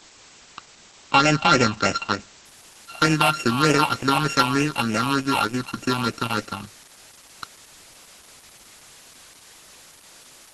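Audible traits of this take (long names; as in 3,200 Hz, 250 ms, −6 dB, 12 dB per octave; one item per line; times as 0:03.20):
a buzz of ramps at a fixed pitch in blocks of 32 samples
phaser sweep stages 6, 3.3 Hz, lowest notch 440–1,100 Hz
a quantiser's noise floor 8 bits, dither triangular
Opus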